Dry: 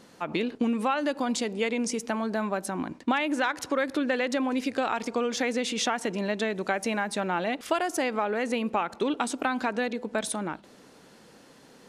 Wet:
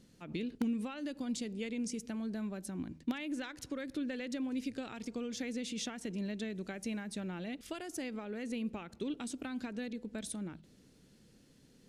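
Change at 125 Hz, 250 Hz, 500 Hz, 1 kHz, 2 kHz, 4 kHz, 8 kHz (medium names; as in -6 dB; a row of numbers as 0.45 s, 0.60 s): -5.5 dB, -7.5 dB, -15.0 dB, -21.5 dB, -16.0 dB, -12.0 dB, -10.0 dB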